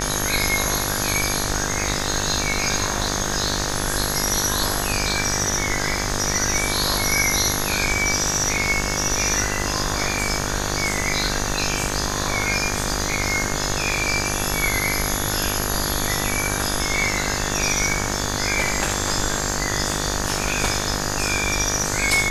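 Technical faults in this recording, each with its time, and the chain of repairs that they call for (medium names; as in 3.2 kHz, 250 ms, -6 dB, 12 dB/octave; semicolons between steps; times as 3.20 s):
buzz 50 Hz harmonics 38 -27 dBFS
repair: de-hum 50 Hz, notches 38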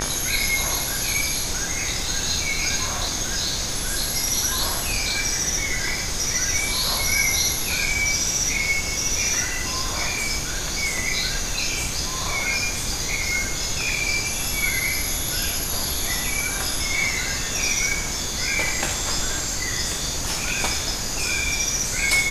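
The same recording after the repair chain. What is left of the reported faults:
nothing left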